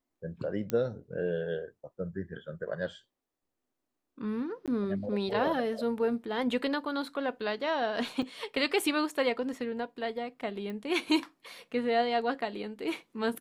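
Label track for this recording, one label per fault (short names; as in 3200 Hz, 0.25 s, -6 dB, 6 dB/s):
0.700000	0.700000	pop -16 dBFS
4.660000	4.680000	gap 17 ms
8.220000	8.230000	gap 5.4 ms
10.700000	10.700000	pop -28 dBFS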